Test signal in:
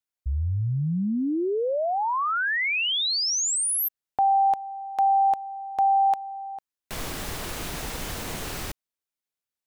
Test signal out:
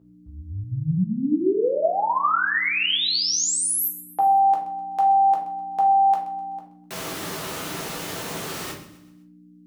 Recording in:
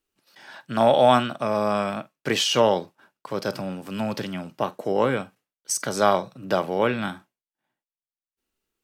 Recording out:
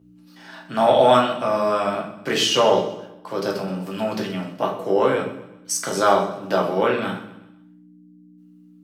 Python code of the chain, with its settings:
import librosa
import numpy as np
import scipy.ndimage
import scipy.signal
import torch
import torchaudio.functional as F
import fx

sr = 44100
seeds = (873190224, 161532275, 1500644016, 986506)

p1 = fx.add_hum(x, sr, base_hz=60, snr_db=22)
p2 = scipy.signal.sosfilt(scipy.signal.butter(2, 170.0, 'highpass', fs=sr, output='sos'), p1)
p3 = p2 + fx.echo_feedback(p2, sr, ms=127, feedback_pct=44, wet_db=-15.5, dry=0)
p4 = fx.room_shoebox(p3, sr, seeds[0], volume_m3=55.0, walls='mixed', distance_m=0.75)
y = p4 * 10.0 ** (-1.0 / 20.0)